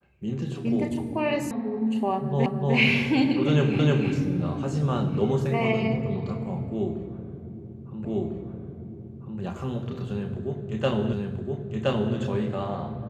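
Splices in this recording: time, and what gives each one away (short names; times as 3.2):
1.51 sound cut off
2.46 repeat of the last 0.3 s
3.79 repeat of the last 0.31 s
8.05 repeat of the last 1.35 s
11.13 repeat of the last 1.02 s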